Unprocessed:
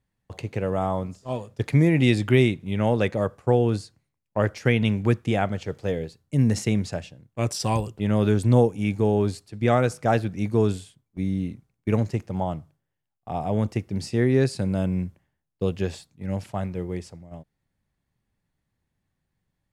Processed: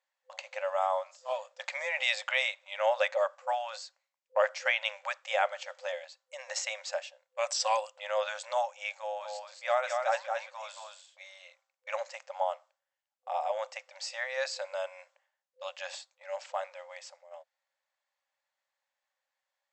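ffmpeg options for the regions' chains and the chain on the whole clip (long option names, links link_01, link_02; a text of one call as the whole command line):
ffmpeg -i in.wav -filter_complex "[0:a]asettb=1/sr,asplit=3[link_01][link_02][link_03];[link_01]atrim=end=8.994[link_04];[link_02]atrim=start=8.99:end=11.21,asetpts=PTS-STARTPTS,afade=type=in:duration=0.004:curve=qsin,afade=type=out:start_time=2.216:duration=0.004:curve=qsin,flanger=delay=2.9:depth=4.5:regen=-89:speed=1.4:shape=sinusoidal,aecho=1:1:223:0.596,atrim=end_sample=97902[link_05];[link_03]atrim=start=11.206[link_06];[link_04][link_05]acrossfade=duration=0.004:curve1=hsin:curve2=qsin[link_07];[link_07][link_06]acrossfade=duration=0.004:curve1=qsin:curve2=hsin,afftfilt=real='re*between(b*sr/4096,510,8100)':imag='im*between(b*sr/4096,510,8100)':win_size=4096:overlap=0.75,bandreject=frequency=680:width=12" out.wav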